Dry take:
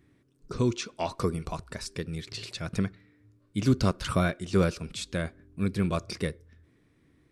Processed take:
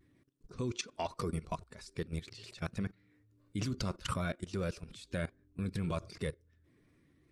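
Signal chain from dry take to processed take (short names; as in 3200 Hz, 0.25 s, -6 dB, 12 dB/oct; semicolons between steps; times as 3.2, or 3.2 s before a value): bin magnitudes rounded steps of 15 dB; level quantiser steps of 17 dB; vibrato 0.45 Hz 25 cents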